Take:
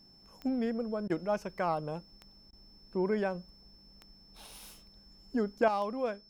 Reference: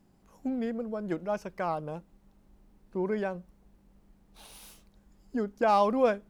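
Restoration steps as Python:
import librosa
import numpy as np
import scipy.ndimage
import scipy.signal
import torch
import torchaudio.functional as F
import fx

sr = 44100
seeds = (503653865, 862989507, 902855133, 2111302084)

y = fx.fix_declick_ar(x, sr, threshold=10.0)
y = fx.notch(y, sr, hz=5300.0, q=30.0)
y = fx.fix_interpolate(y, sr, at_s=(1.08, 2.51), length_ms=17.0)
y = fx.gain(y, sr, db=fx.steps((0.0, 0.0), (5.68, 9.0)))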